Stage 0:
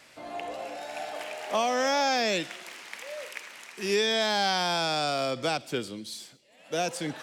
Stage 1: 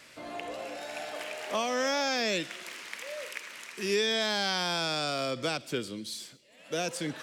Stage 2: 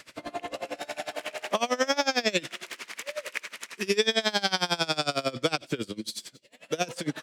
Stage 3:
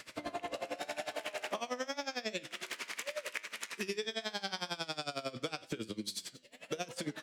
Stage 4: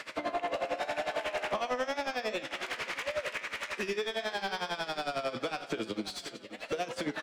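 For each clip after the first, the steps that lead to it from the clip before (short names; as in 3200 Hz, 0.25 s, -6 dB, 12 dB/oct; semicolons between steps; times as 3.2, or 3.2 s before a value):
bell 780 Hz -7 dB 0.45 oct; in parallel at -3 dB: compressor, threshold -38 dBFS, peak gain reduction 15 dB; on the sum: gain -3 dB
dB-linear tremolo 11 Hz, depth 24 dB; gain +8.5 dB
compressor 6:1, threshold -34 dBFS, peak gain reduction 15 dB; flange 0.85 Hz, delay 8.9 ms, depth 3.3 ms, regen +87%; gain +3.5 dB
overdrive pedal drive 21 dB, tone 1400 Hz, clips at -20.5 dBFS; feedback echo 0.536 s, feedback 42%, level -14 dB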